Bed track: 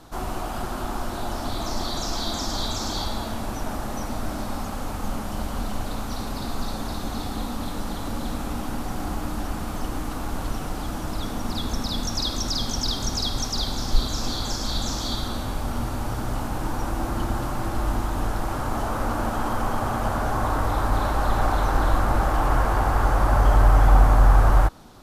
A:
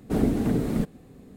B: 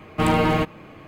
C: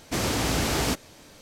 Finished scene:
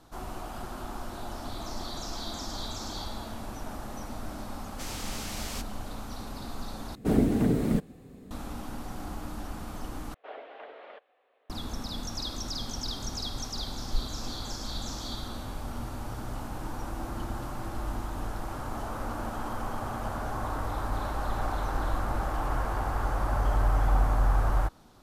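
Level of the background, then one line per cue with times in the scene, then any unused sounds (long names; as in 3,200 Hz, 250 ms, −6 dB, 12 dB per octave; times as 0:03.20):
bed track −9 dB
0:04.67: mix in C −15 dB + tilt shelving filter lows −6.5 dB, about 1,300 Hz
0:06.95: overwrite with A −0.5 dB
0:10.14: overwrite with A −6 dB + elliptic band-pass filter 580–3,200 Hz, stop band 50 dB
not used: B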